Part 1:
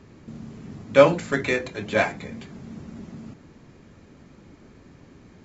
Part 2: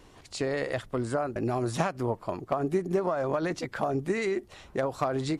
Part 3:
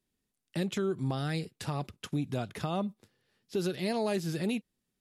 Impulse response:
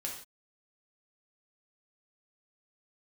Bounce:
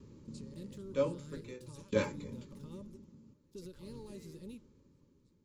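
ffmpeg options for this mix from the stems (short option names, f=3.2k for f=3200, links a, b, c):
-filter_complex "[0:a]aeval=exprs='val(0)*pow(10,-21*if(lt(mod(0.52*n/s,1),2*abs(0.52)/1000),1-mod(0.52*n/s,1)/(2*abs(0.52)/1000),(mod(0.52*n/s,1)-2*abs(0.52)/1000)/(1-2*abs(0.52)/1000))/20)':c=same,volume=-4dB[a];[1:a]agate=range=-12dB:threshold=-44dB:ratio=16:detection=peak,asubboost=boost=11.5:cutoff=60,acrossover=split=140|3000[b][c][d];[c]acompressor=threshold=-46dB:ratio=2[e];[b][e][d]amix=inputs=3:normalize=0,volume=-16.5dB[f];[2:a]aeval=exprs='sgn(val(0))*max(abs(val(0))-0.00355,0)':c=same,volume=-15.5dB,asplit=2[g][h];[h]apad=whole_len=238016[i];[f][i]sidechaingate=range=-25dB:threshold=-60dB:ratio=16:detection=peak[j];[a][j][g]amix=inputs=3:normalize=0,asuperstop=centerf=710:order=12:qfactor=3,equalizer=f=1.8k:t=o:w=1.6:g=-14"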